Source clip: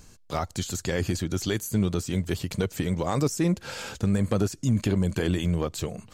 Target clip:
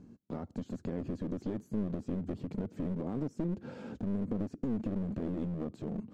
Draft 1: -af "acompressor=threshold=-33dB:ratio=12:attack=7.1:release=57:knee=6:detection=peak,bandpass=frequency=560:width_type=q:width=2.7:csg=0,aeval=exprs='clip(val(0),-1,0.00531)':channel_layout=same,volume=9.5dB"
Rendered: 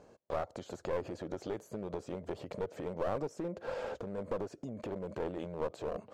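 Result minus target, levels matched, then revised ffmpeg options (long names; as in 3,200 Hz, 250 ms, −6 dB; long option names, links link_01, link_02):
500 Hz band +7.5 dB
-af "acompressor=threshold=-33dB:ratio=12:attack=7.1:release=57:knee=6:detection=peak,bandpass=frequency=240:width_type=q:width=2.7:csg=0,aeval=exprs='clip(val(0),-1,0.00531)':channel_layout=same,volume=9.5dB"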